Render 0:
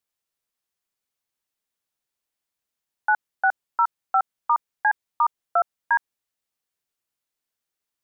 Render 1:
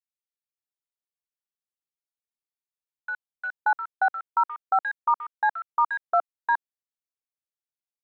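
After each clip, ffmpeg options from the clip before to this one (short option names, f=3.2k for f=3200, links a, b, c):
-filter_complex "[0:a]acrossover=split=1700[a][b];[a]adelay=580[c];[c][b]amix=inputs=2:normalize=0,afwtdn=0.01"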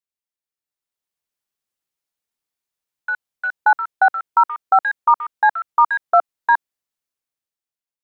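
-af "dynaudnorm=f=260:g=7:m=9dB"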